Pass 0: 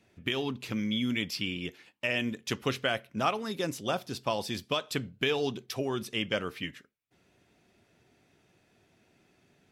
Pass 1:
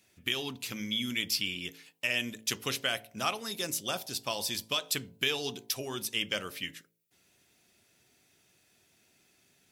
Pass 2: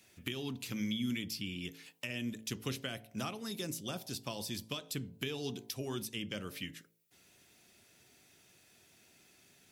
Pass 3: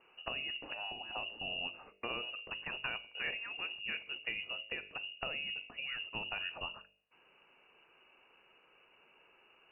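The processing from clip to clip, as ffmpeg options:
-af "bandreject=f=54.91:t=h:w=4,bandreject=f=109.82:t=h:w=4,bandreject=f=164.73:t=h:w=4,bandreject=f=219.64:t=h:w=4,bandreject=f=274.55:t=h:w=4,bandreject=f=329.46:t=h:w=4,bandreject=f=384.37:t=h:w=4,bandreject=f=439.28:t=h:w=4,bandreject=f=494.19:t=h:w=4,bandreject=f=549.1:t=h:w=4,bandreject=f=604.01:t=h:w=4,bandreject=f=658.92:t=h:w=4,bandreject=f=713.83:t=h:w=4,bandreject=f=768.74:t=h:w=4,bandreject=f=823.65:t=h:w=4,bandreject=f=878.56:t=h:w=4,bandreject=f=933.47:t=h:w=4,bandreject=f=988.38:t=h:w=4,crystalizer=i=5.5:c=0,volume=-6.5dB"
-filter_complex "[0:a]acrossover=split=330[a][b];[b]acompressor=threshold=-47dB:ratio=3[c];[a][c]amix=inputs=2:normalize=0,volume=3dB"
-af "lowpass=f=2.6k:t=q:w=0.5098,lowpass=f=2.6k:t=q:w=0.6013,lowpass=f=2.6k:t=q:w=0.9,lowpass=f=2.6k:t=q:w=2.563,afreqshift=-3000,bandreject=f=49.06:t=h:w=4,bandreject=f=98.12:t=h:w=4,bandreject=f=147.18:t=h:w=4,bandreject=f=196.24:t=h:w=4,bandreject=f=245.3:t=h:w=4,bandreject=f=294.36:t=h:w=4,bandreject=f=343.42:t=h:w=4,bandreject=f=392.48:t=h:w=4,bandreject=f=441.54:t=h:w=4,bandreject=f=490.6:t=h:w=4,bandreject=f=539.66:t=h:w=4,bandreject=f=588.72:t=h:w=4,bandreject=f=637.78:t=h:w=4,bandreject=f=686.84:t=h:w=4,afftfilt=real='re*lt(hypot(re,im),0.0794)':imag='im*lt(hypot(re,im),0.0794)':win_size=1024:overlap=0.75,volume=3dB"

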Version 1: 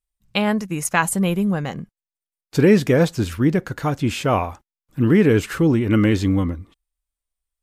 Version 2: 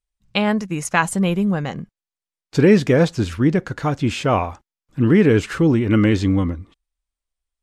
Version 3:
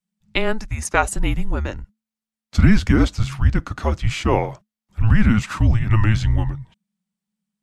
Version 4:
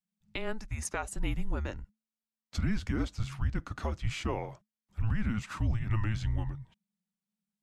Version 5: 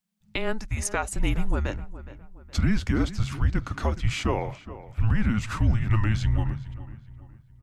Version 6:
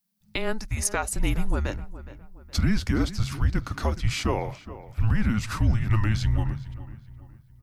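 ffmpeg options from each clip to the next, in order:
-af "lowpass=7.7k,volume=1dB"
-af "afreqshift=-220"
-af "alimiter=limit=-12dB:level=0:latency=1:release=357,volume=-9dB"
-filter_complex "[0:a]asplit=2[a][b];[b]adelay=417,lowpass=f=2.4k:p=1,volume=-15dB,asplit=2[c][d];[d]adelay=417,lowpass=f=2.4k:p=1,volume=0.42,asplit=2[e][f];[f]adelay=417,lowpass=f=2.4k:p=1,volume=0.42,asplit=2[g][h];[h]adelay=417,lowpass=f=2.4k:p=1,volume=0.42[i];[a][c][e][g][i]amix=inputs=5:normalize=0,volume=7.5dB"
-af "aexciter=amount=2.1:drive=2.9:freq=4.2k"

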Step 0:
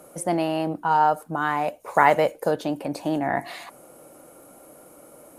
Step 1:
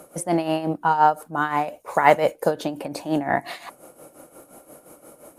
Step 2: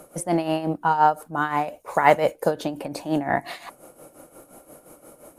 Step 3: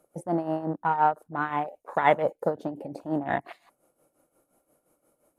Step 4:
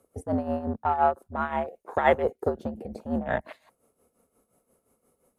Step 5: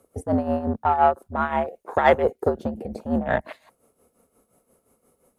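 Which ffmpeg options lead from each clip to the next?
-af "tremolo=f=5.7:d=0.72,volume=4.5dB"
-af "lowshelf=f=67:g=8.5,volume=-1dB"
-af "afwtdn=0.0316,volume=-4.5dB"
-af "afreqshift=-74"
-af "asoftclip=type=tanh:threshold=-8.5dB,volume=5dB"

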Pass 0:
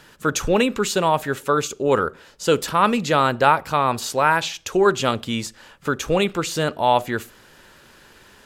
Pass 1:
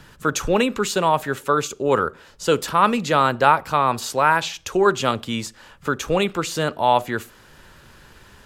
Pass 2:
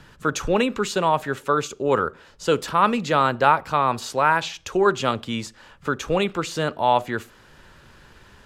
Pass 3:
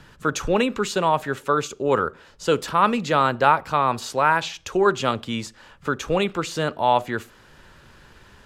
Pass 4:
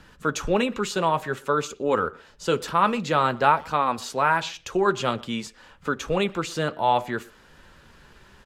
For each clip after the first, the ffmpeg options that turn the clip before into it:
-filter_complex "[0:a]equalizer=f=1.1k:w=1.5:g=2.5,acrossover=split=150|2000[a][b][c];[a]acompressor=mode=upward:threshold=-39dB:ratio=2.5[d];[d][b][c]amix=inputs=3:normalize=0,volume=-1dB"
-af "highshelf=f=9.6k:g=-11,volume=-1.5dB"
-af anull
-filter_complex "[0:a]flanger=delay=3.7:depth=2.5:regen=-60:speed=0.52:shape=triangular,asplit=2[a][b];[b]adelay=120,highpass=300,lowpass=3.4k,asoftclip=type=hard:threshold=-16dB,volume=-23dB[c];[a][c]amix=inputs=2:normalize=0,volume=2dB"

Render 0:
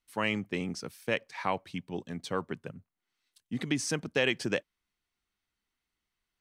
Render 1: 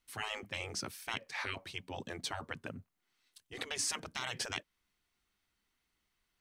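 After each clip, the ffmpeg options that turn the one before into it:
-filter_complex "[0:a]afftfilt=real='re*lt(hypot(re,im),0.0501)':imag='im*lt(hypot(re,im),0.0501)':win_size=1024:overlap=0.75,asplit=2[a][b];[b]alimiter=level_in=5.5dB:limit=-24dB:level=0:latency=1:release=204,volume=-5.5dB,volume=2dB[c];[a][c]amix=inputs=2:normalize=0,volume=-3dB"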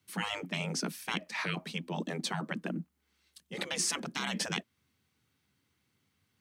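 -af "afreqshift=71,equalizer=f=200:w=1.4:g=11,volume=3.5dB"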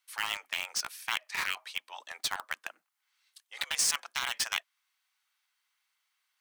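-filter_complex "[0:a]highpass=f=880:w=0.5412,highpass=f=880:w=1.3066,asplit=2[a][b];[b]acrusher=bits=4:mix=0:aa=0.000001,volume=-4dB[c];[a][c]amix=inputs=2:normalize=0"

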